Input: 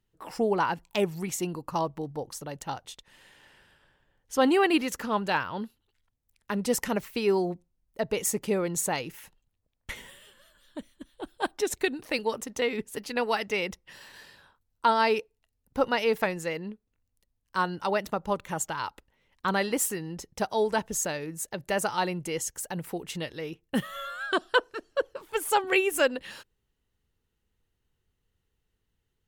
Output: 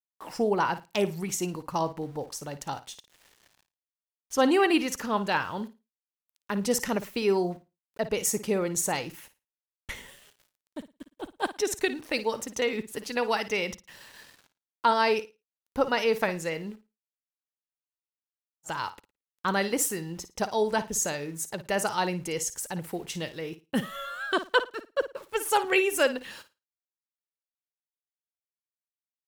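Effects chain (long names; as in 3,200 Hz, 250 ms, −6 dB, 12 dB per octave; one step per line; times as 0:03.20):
centre clipping without the shift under −50.5 dBFS
dynamic equaliser 5,800 Hz, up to +5 dB, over −52 dBFS, Q 3.1
on a send: flutter between parallel walls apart 9.5 metres, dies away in 0.25 s
on the sum: frozen spectrum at 0:17.14, 1.52 s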